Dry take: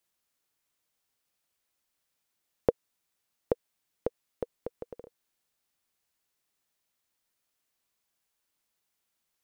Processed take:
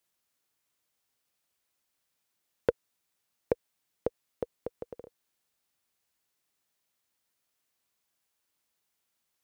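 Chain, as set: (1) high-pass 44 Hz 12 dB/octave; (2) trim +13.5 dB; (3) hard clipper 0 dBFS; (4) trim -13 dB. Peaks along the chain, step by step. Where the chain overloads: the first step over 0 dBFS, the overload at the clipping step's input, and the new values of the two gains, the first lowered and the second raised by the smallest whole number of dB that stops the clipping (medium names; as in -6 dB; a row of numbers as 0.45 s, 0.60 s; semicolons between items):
-8.0 dBFS, +5.5 dBFS, 0.0 dBFS, -13.0 dBFS; step 2, 5.5 dB; step 2 +7.5 dB, step 4 -7 dB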